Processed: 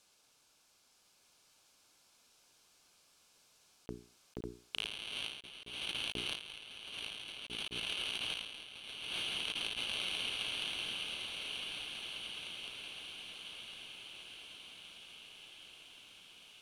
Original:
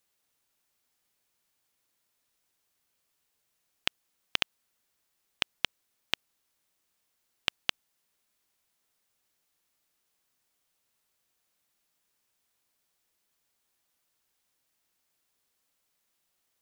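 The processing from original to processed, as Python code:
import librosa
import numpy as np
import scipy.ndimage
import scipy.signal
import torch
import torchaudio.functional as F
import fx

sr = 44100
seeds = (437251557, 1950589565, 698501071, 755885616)

p1 = fx.quant_companded(x, sr, bits=2)
p2 = x + (p1 * 10.0 ** (-7.0 / 20.0))
p3 = fx.peak_eq(p2, sr, hz=5100.0, db=3.0, octaves=0.67)
p4 = fx.hum_notches(p3, sr, base_hz=60, count=7)
p5 = 10.0 ** (-10.0 / 20.0) * np.tanh(p4 / 10.0 ** (-10.0 / 20.0))
p6 = scipy.signal.sosfilt(scipy.signal.butter(2, 9200.0, 'lowpass', fs=sr, output='sos'), p5)
p7 = fx.low_shelf(p6, sr, hz=130.0, db=-3.5)
p8 = fx.notch(p7, sr, hz=1900.0, q=5.1)
p9 = p8 + fx.echo_diffused(p8, sr, ms=1183, feedback_pct=63, wet_db=-4.0, dry=0)
p10 = fx.over_compress(p9, sr, threshold_db=-48.0, ratio=-0.5)
y = p10 * 10.0 ** (5.5 / 20.0)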